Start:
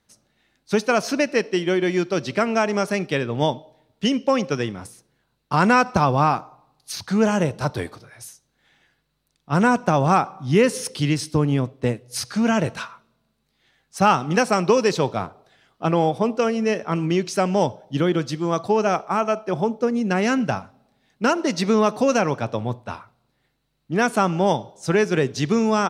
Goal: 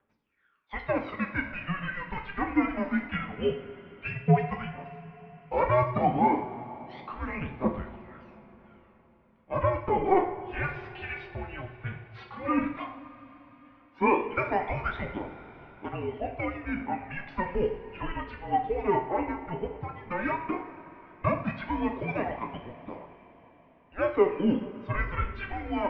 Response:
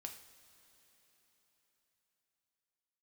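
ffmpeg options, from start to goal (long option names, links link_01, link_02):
-filter_complex "[0:a]aphaser=in_gain=1:out_gain=1:delay=4.2:decay=0.75:speed=0.13:type=triangular[link_01];[1:a]atrim=start_sample=2205[link_02];[link_01][link_02]afir=irnorm=-1:irlink=0,highpass=frequency=530:width_type=q:width=0.5412,highpass=frequency=530:width_type=q:width=1.307,lowpass=frequency=3000:width_type=q:width=0.5176,lowpass=frequency=3000:width_type=q:width=0.7071,lowpass=frequency=3000:width_type=q:width=1.932,afreqshift=-380,volume=-3dB"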